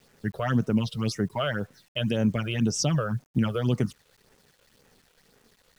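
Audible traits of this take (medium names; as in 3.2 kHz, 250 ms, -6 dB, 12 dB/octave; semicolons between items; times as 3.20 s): phasing stages 8, 1.9 Hz, lowest notch 240–4300 Hz; a quantiser's noise floor 10-bit, dither none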